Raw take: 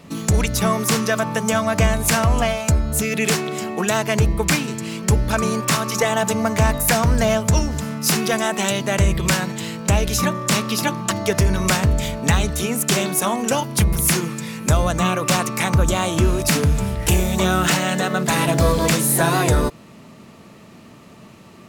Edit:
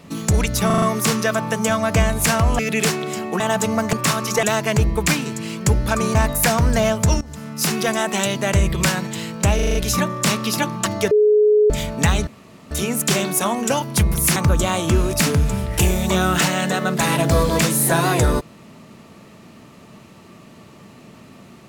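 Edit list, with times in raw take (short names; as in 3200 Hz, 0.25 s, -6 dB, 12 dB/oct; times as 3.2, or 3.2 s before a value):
0.66 stutter 0.04 s, 5 plays
2.43–3.04 cut
3.85–5.57 swap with 6.07–6.6
7.66–8.49 fade in equal-power, from -17 dB
10 stutter 0.04 s, 6 plays
11.36–11.95 bleep 422 Hz -10.5 dBFS
12.52 insert room tone 0.44 s
14.17–15.65 cut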